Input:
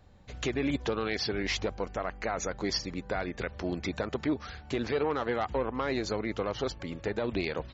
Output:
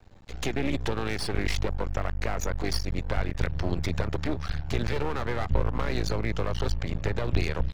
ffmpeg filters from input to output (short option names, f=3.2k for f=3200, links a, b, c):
-filter_complex "[0:a]asubboost=boost=9:cutoff=87,aeval=exprs='max(val(0),0)':c=same,acrossover=split=320[a][b];[b]acompressor=threshold=-38dB:ratio=2.5[c];[a][c]amix=inputs=2:normalize=0,volume=7dB"